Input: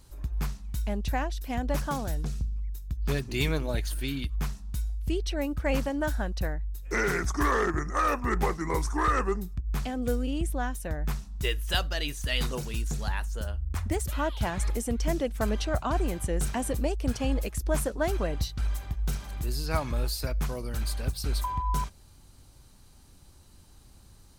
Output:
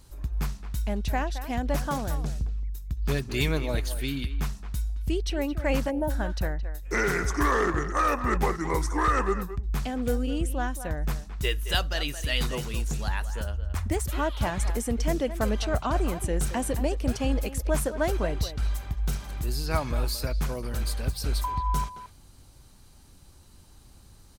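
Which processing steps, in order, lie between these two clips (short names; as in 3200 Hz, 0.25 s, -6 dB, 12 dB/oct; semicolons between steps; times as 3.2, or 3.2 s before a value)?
speakerphone echo 0.22 s, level -11 dB; spectral gain 5.9–6.1, 940–8800 Hz -17 dB; gain +1.5 dB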